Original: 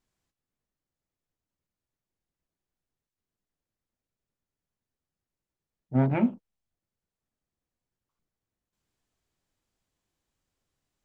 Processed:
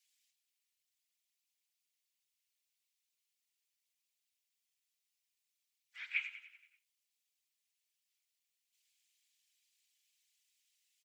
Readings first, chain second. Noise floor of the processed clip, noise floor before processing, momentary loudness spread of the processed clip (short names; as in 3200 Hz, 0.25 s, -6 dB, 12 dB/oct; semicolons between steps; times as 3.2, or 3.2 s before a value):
under -85 dBFS, under -85 dBFS, 20 LU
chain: on a send: feedback echo 95 ms, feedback 54%, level -11 dB; on the sum: whisperiser; steep high-pass 2200 Hz 36 dB/oct; gain +7.5 dB